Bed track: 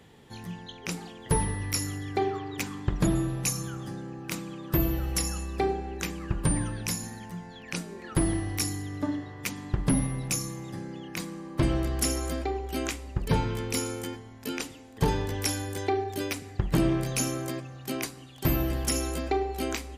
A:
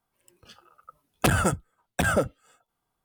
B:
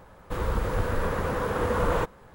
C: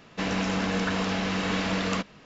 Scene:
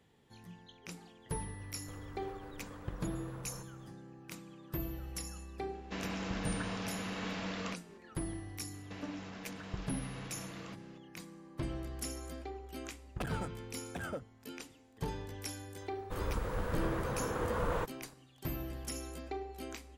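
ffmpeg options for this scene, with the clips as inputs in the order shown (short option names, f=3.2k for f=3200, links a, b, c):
-filter_complex "[2:a]asplit=2[a][b];[3:a]asplit=2[c][d];[0:a]volume=-13.5dB[e];[a]acompressor=threshold=-36dB:ratio=6:attack=3.2:release=140:knee=1:detection=peak[f];[d]acompressor=threshold=-35dB:ratio=6:attack=3.2:release=140:knee=1:detection=peak[g];[1:a]highshelf=f=6.2k:g=-11[h];[f]atrim=end=2.34,asetpts=PTS-STARTPTS,volume=-12dB,afade=t=in:d=0.004:c=hsin,afade=t=out:st=2.336:d=0.004:c=hsin,adelay=1580[i];[c]atrim=end=2.25,asetpts=PTS-STARTPTS,volume=-12dB,afade=t=in:d=0.004:c=hsin,afade=t=out:st=2.246:d=0.004:c=hsin,adelay=252693S[j];[g]atrim=end=2.25,asetpts=PTS-STARTPTS,volume=-9.5dB,afade=t=in:d=0.004:c=hsin,afade=t=out:st=2.246:d=0.004:c=hsin,adelay=8730[k];[h]atrim=end=3.04,asetpts=PTS-STARTPTS,volume=-17.5dB,afade=t=in:d=0.004:c=hsin,afade=t=out:st=3.036:d=0.004:c=hsin,adelay=11960[l];[b]atrim=end=2.34,asetpts=PTS-STARTPTS,volume=-9dB,afade=t=in:d=0.004:c=hsin,afade=t=out:st=2.336:d=0.004:c=hsin,adelay=15800[m];[e][i][j][k][l][m]amix=inputs=6:normalize=0"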